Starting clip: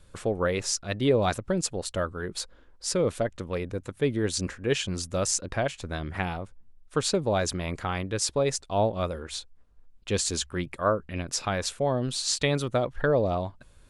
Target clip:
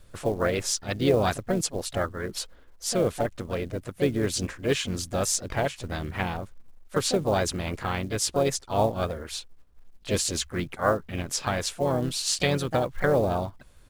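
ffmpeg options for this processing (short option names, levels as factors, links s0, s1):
-filter_complex "[0:a]asplit=4[s0][s1][s2][s3];[s1]asetrate=29433,aresample=44100,atempo=1.49831,volume=0.178[s4];[s2]asetrate=37084,aresample=44100,atempo=1.18921,volume=0.141[s5];[s3]asetrate=55563,aresample=44100,atempo=0.793701,volume=0.398[s6];[s0][s4][s5][s6]amix=inputs=4:normalize=0,acrusher=bits=7:mode=log:mix=0:aa=0.000001"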